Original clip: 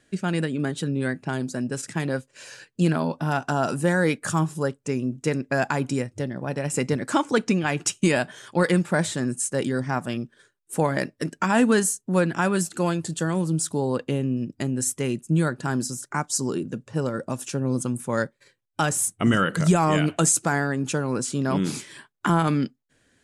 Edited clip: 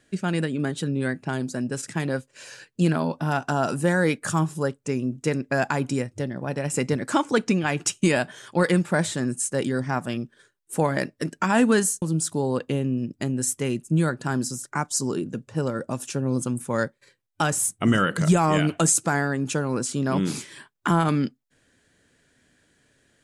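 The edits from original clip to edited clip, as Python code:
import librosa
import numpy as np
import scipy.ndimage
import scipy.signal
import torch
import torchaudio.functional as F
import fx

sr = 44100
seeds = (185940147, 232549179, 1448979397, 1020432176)

y = fx.edit(x, sr, fx.cut(start_s=12.02, length_s=1.39), tone=tone)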